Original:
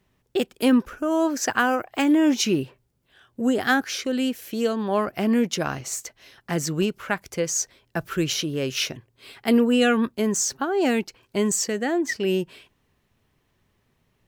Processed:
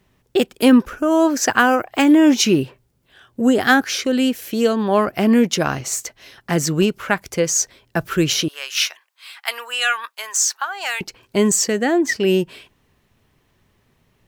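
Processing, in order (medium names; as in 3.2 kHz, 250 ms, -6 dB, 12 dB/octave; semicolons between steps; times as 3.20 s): 8.48–11.01 s: high-pass 930 Hz 24 dB/octave; trim +6.5 dB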